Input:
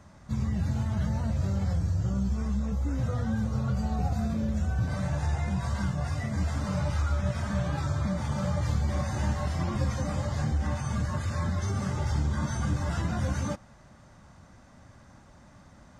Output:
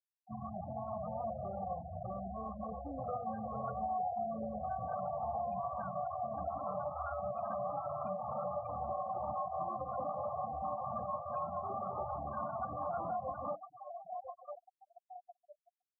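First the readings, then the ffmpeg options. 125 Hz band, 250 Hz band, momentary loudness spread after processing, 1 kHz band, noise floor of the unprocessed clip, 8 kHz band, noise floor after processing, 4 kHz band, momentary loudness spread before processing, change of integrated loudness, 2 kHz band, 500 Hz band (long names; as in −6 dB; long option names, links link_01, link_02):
−22.0 dB, −16.0 dB, 8 LU, +3.0 dB, −54 dBFS, below −35 dB, below −85 dBFS, below −40 dB, 2 LU, −10.0 dB, −20.5 dB, +0.5 dB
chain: -filter_complex "[0:a]asplit=3[link_01][link_02][link_03];[link_01]bandpass=frequency=730:width_type=q:width=8,volume=0dB[link_04];[link_02]bandpass=frequency=1090:width_type=q:width=8,volume=-6dB[link_05];[link_03]bandpass=frequency=2440:width_type=q:width=8,volume=-9dB[link_06];[link_04][link_05][link_06]amix=inputs=3:normalize=0,highshelf=frequency=2900:gain=-5,asplit=2[link_07][link_08];[link_08]adelay=1002,lowpass=frequency=1700:poles=1,volume=-11dB,asplit=2[link_09][link_10];[link_10]adelay=1002,lowpass=frequency=1700:poles=1,volume=0.32,asplit=2[link_11][link_12];[link_12]adelay=1002,lowpass=frequency=1700:poles=1,volume=0.32[link_13];[link_09][link_11][link_13]amix=inputs=3:normalize=0[link_14];[link_07][link_14]amix=inputs=2:normalize=0,alimiter=level_in=15dB:limit=-24dB:level=0:latency=1:release=209,volume=-15dB,afftfilt=real='re*gte(hypot(re,im),0.00501)':imag='im*gte(hypot(re,im),0.00501)':win_size=1024:overlap=0.75,bandreject=frequency=50:width_type=h:width=6,bandreject=frequency=100:width_type=h:width=6,bandreject=frequency=150:width_type=h:width=6,bandreject=frequency=200:width_type=h:width=6,bandreject=frequency=250:width_type=h:width=6,bandreject=frequency=300:width_type=h:width=6,afftdn=noise_reduction=22:noise_floor=-58,asplit=2[link_15][link_16];[link_16]acompressor=threshold=-58dB:ratio=6,volume=2.5dB[link_17];[link_15][link_17]amix=inputs=2:normalize=0,volume=8dB"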